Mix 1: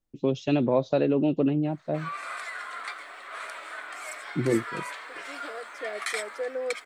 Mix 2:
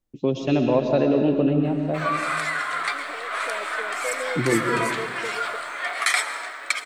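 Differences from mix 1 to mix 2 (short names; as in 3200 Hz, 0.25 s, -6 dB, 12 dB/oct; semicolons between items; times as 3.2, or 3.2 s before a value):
second voice: entry -2.35 s; background +9.5 dB; reverb: on, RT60 1.6 s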